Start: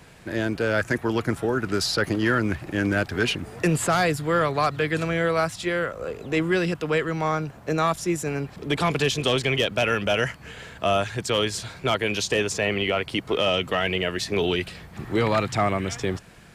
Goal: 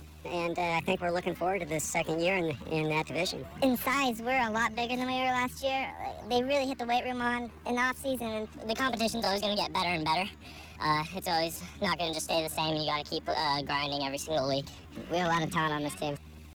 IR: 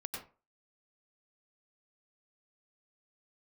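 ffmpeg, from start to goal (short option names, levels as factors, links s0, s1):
-filter_complex "[0:a]highshelf=f=2200:g=-3,acrossover=split=110|3500[s0][s1][s2];[s2]acompressor=mode=upward:threshold=0.00282:ratio=2.5[s3];[s0][s1][s3]amix=inputs=3:normalize=0,aeval=exprs='val(0)+0.00562*(sin(2*PI*50*n/s)+sin(2*PI*2*50*n/s)/2+sin(2*PI*3*50*n/s)/3+sin(2*PI*4*50*n/s)/4+sin(2*PI*5*50*n/s)/5)':c=same,asetrate=68011,aresample=44100,atempo=0.64842,aphaser=in_gain=1:out_gain=1:delay=3.8:decay=0.35:speed=1.1:type=triangular,volume=0.473"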